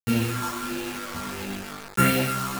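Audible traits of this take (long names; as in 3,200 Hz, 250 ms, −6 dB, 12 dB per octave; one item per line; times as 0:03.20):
a buzz of ramps at a fixed pitch in blocks of 32 samples
phaser sweep stages 4, 1.5 Hz, lowest notch 480–1,100 Hz
a quantiser's noise floor 6 bits, dither none
a shimmering, thickened sound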